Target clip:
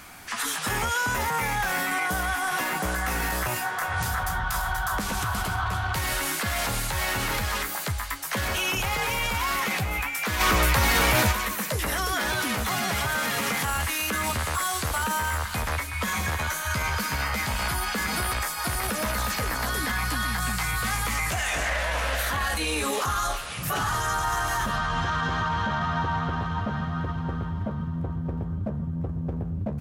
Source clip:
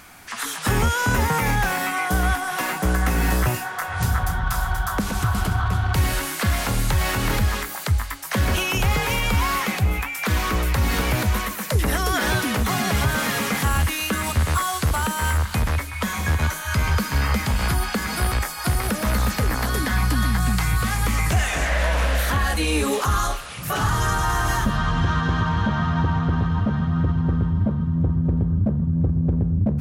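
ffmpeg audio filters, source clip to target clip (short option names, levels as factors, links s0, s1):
-filter_complex "[0:a]acrossover=split=520[s0][s1];[s0]acompressor=threshold=0.0398:ratio=6[s2];[s1]asplit=2[s3][s4];[s4]adelay=13,volume=0.422[s5];[s3][s5]amix=inputs=2:normalize=0[s6];[s2][s6]amix=inputs=2:normalize=0,alimiter=limit=0.126:level=0:latency=1:release=18,asplit=3[s7][s8][s9];[s7]afade=t=out:st=10.39:d=0.02[s10];[s8]acontrast=63,afade=t=in:st=10.39:d=0.02,afade=t=out:st=11.31:d=0.02[s11];[s9]afade=t=in:st=11.31:d=0.02[s12];[s10][s11][s12]amix=inputs=3:normalize=0"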